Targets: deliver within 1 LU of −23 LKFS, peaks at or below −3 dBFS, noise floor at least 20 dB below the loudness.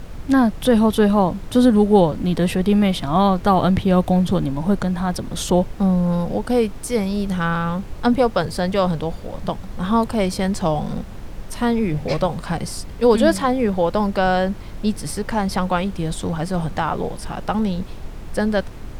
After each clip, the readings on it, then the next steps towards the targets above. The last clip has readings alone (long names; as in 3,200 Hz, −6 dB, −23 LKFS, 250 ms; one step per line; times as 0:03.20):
background noise floor −34 dBFS; target noise floor −40 dBFS; integrated loudness −20.0 LKFS; sample peak −3.5 dBFS; target loudness −23.0 LKFS
→ noise reduction from a noise print 6 dB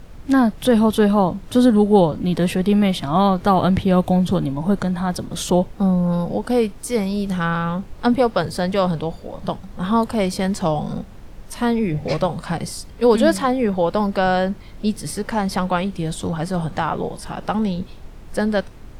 background noise floor −39 dBFS; target noise floor −40 dBFS
→ noise reduction from a noise print 6 dB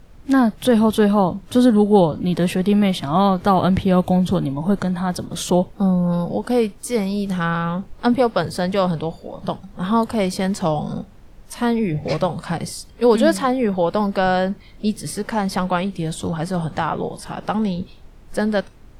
background noise floor −44 dBFS; integrated loudness −20.0 LKFS; sample peak −3.5 dBFS; target loudness −23.0 LKFS
→ level −3 dB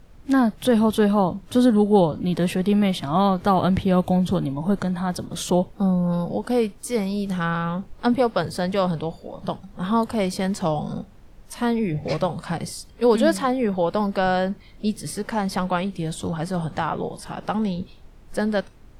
integrated loudness −23.0 LKFS; sample peak −6.5 dBFS; background noise floor −47 dBFS